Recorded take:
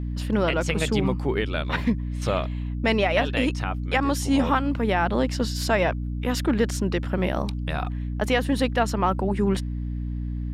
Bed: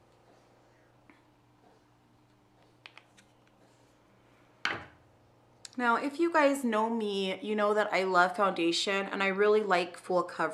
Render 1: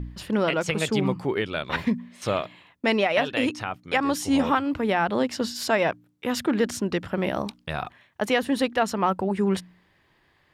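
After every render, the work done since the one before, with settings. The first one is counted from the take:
hum removal 60 Hz, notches 5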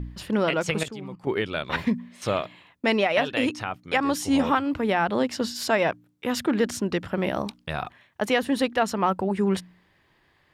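0:00.83–0:01.27: output level in coarse steps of 18 dB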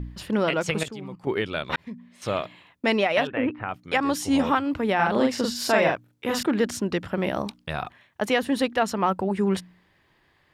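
0:01.76–0:02.43: fade in
0:03.27–0:03.69: inverse Chebyshev low-pass filter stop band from 5,400 Hz, stop band 50 dB
0:04.95–0:06.43: double-tracking delay 42 ms −2 dB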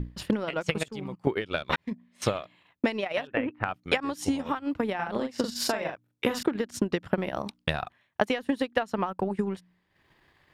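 downward compressor 16 to 1, threshold −27 dBFS, peak gain reduction 12.5 dB
transient designer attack +8 dB, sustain −11 dB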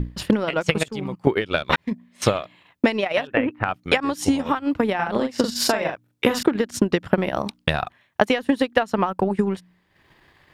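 level +7.5 dB
brickwall limiter −2 dBFS, peak gain reduction 3 dB

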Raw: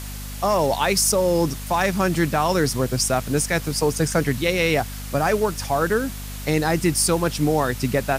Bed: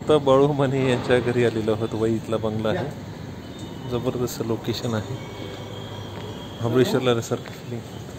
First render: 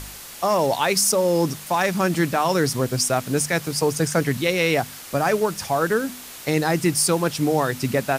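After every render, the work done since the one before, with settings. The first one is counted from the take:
hum removal 50 Hz, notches 5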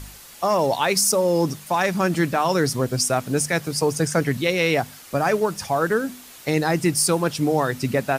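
broadband denoise 6 dB, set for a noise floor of −39 dBFS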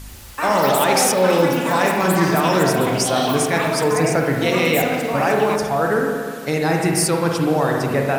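spring reverb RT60 1.9 s, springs 43/59 ms, chirp 30 ms, DRR 0 dB
delay with pitch and tempo change per echo 96 ms, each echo +7 semitones, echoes 3, each echo −6 dB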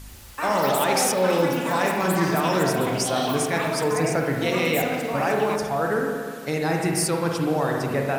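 level −5 dB

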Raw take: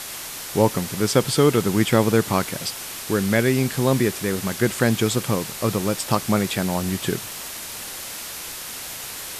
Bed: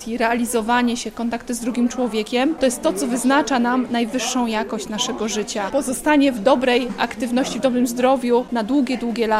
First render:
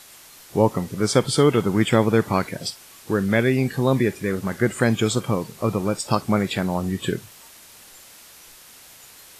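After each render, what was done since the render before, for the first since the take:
noise reduction from a noise print 13 dB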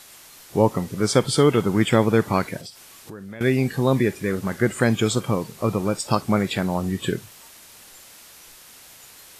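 0:02.60–0:03.41: downward compressor 4 to 1, threshold −37 dBFS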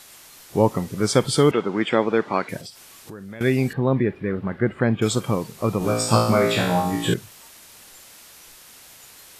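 0:01.51–0:02.49: band-pass filter 270–3,600 Hz
0:03.73–0:05.02: high-frequency loss of the air 460 metres
0:05.79–0:07.14: flutter between parallel walls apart 3 metres, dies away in 0.72 s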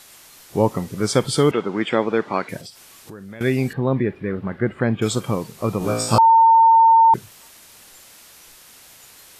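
0:06.18–0:07.14: beep over 906 Hz −8.5 dBFS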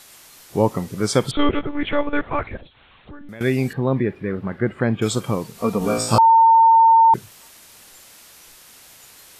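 0:01.31–0:03.29: one-pitch LPC vocoder at 8 kHz 290 Hz
0:05.55–0:05.98: comb filter 4.3 ms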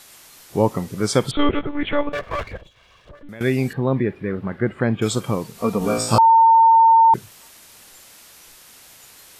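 0:02.12–0:03.23: lower of the sound and its delayed copy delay 1.8 ms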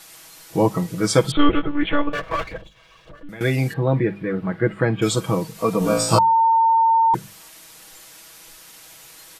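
mains-hum notches 50/100/150/200 Hz
comb filter 6.2 ms, depth 74%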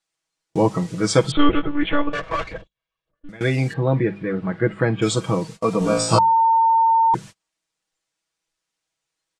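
low-pass filter 8,700 Hz 24 dB per octave
noise gate −35 dBFS, range −35 dB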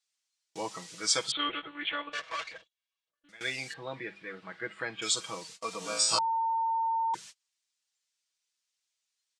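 resonant band-pass 5,500 Hz, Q 0.75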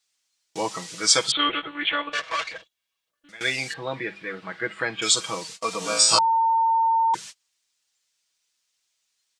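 level +9 dB

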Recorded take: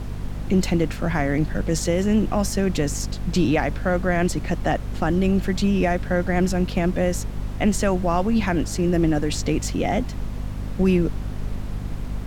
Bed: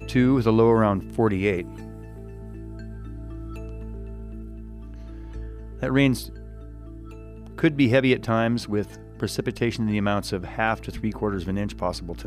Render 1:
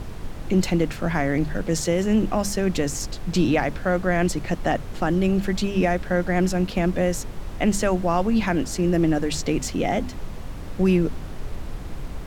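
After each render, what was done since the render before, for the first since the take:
mains-hum notches 50/100/150/200/250 Hz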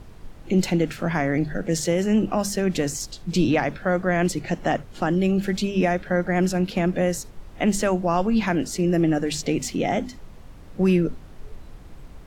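noise reduction from a noise print 10 dB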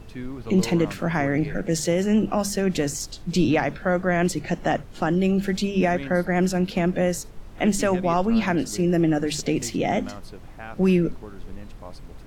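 mix in bed −15.5 dB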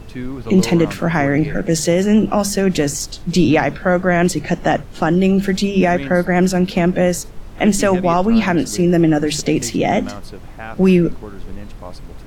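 level +7 dB
brickwall limiter −3 dBFS, peak gain reduction 1.5 dB

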